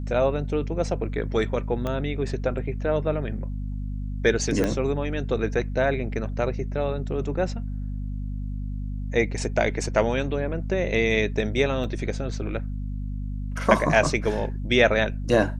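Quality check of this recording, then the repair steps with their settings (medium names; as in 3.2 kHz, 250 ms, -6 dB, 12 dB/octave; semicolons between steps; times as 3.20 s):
hum 50 Hz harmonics 5 -30 dBFS
1.87 s: pop -16 dBFS
4.64 s: pop -11 dBFS
11.84 s: dropout 3.3 ms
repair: de-click; de-hum 50 Hz, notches 5; interpolate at 11.84 s, 3.3 ms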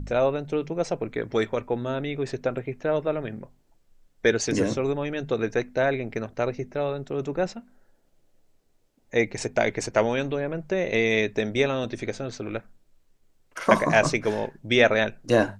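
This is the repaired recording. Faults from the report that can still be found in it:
1.87 s: pop
4.64 s: pop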